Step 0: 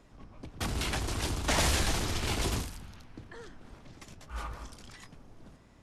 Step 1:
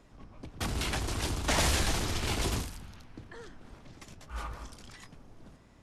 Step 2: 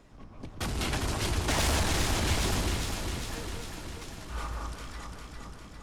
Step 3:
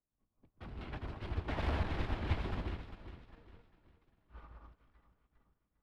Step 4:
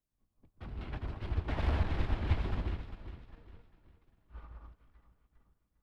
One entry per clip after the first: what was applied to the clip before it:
nothing audible
soft clip -25.5 dBFS, distortion -14 dB; on a send: echo with dull and thin repeats by turns 0.201 s, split 1400 Hz, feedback 80%, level -2 dB; on the sum: gain +2 dB
air absorption 410 m; upward expander 2.5:1, over -48 dBFS; gain -2.5 dB
low shelf 120 Hz +6.5 dB

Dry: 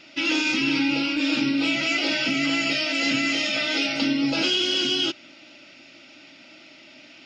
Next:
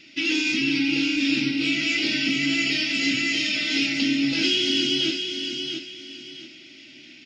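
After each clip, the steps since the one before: band shelf 840 Hz -14 dB; feedback echo 0.679 s, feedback 29%, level -6.5 dB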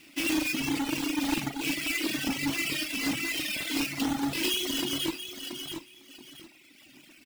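half-waves squared off; doubler 42 ms -11 dB; reverb removal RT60 1.8 s; gain -8 dB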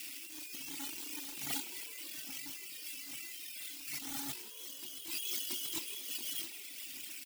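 pre-emphasis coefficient 0.9; negative-ratio compressor -48 dBFS, ratio -1; frequency-shifting echo 0.161 s, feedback 61%, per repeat +85 Hz, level -14.5 dB; gain +4 dB

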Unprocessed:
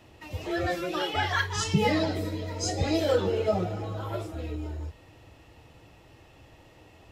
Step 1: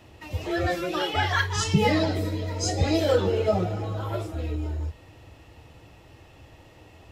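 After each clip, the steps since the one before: bell 80 Hz +3.5 dB 0.83 oct; gain +2.5 dB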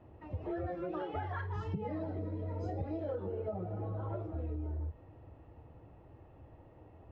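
LPF 1000 Hz 12 dB/oct; compressor 12:1, threshold -29 dBFS, peak gain reduction 14.5 dB; gain -5 dB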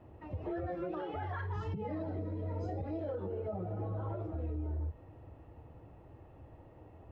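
limiter -31.5 dBFS, peak gain reduction 6.5 dB; gain +1.5 dB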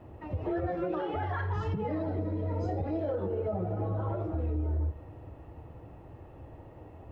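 tape echo 83 ms, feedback 68%, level -12 dB, low-pass 2300 Hz; gain +6 dB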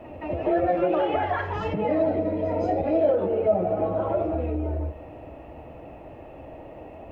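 fifteen-band EQ 100 Hz -8 dB, 250 Hz +5 dB, 630 Hz +11 dB, 2500 Hz +11 dB; pre-echo 0.17 s -13.5 dB; gain +3.5 dB

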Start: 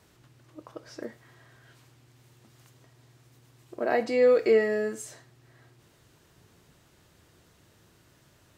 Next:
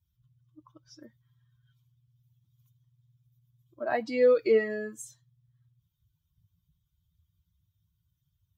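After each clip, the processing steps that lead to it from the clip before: per-bin expansion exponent 2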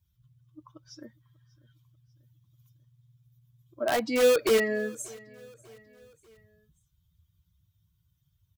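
in parallel at -3.5 dB: wrapped overs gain 22.5 dB; on the sum: feedback echo 0.591 s, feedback 49%, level -23.5 dB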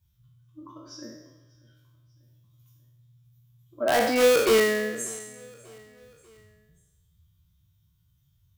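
spectral trails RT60 1.01 s; gain +1.5 dB

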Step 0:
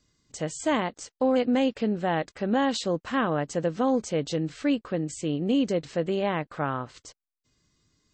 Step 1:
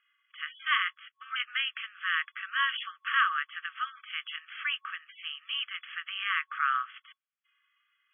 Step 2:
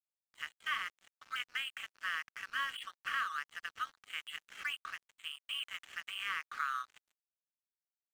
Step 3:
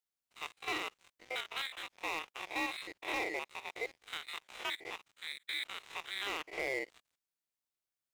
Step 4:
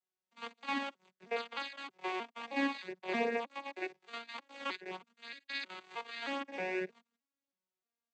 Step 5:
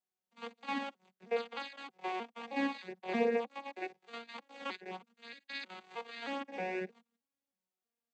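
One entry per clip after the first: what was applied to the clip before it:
FFT band-pass 1100–3400 Hz; gain +7 dB
dynamic EQ 1000 Hz, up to +3 dB, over -35 dBFS, Q 1.1; compressor 3:1, threshold -31 dBFS, peak gain reduction 10 dB; crossover distortion -45.5 dBFS; gain -2.5 dB
stepped spectrum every 50 ms; overloaded stage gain 33.5 dB; ring modulator 800 Hz; gain +6.5 dB
arpeggiated vocoder major triad, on F#3, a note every 0.313 s; flange 0.5 Hz, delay 2.3 ms, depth 3 ms, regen -29%; gain +5.5 dB
small resonant body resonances 210/480/760 Hz, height 9 dB, ringing for 45 ms; gain -3 dB

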